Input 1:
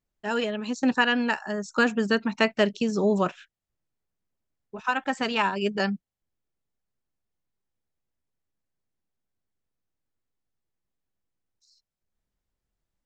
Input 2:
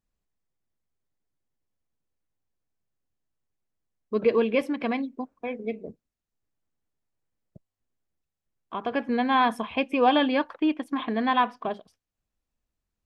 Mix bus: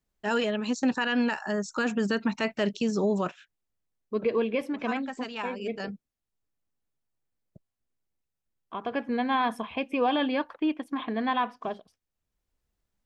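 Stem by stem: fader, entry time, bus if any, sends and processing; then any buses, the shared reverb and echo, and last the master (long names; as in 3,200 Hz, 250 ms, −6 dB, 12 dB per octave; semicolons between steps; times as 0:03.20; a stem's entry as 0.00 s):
+1.5 dB, 0.00 s, no send, de-essing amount 55%; automatic ducking −12 dB, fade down 1.45 s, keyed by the second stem
−3.0 dB, 0.00 s, no send, no processing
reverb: not used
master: brickwall limiter −17 dBFS, peak gain reduction 10.5 dB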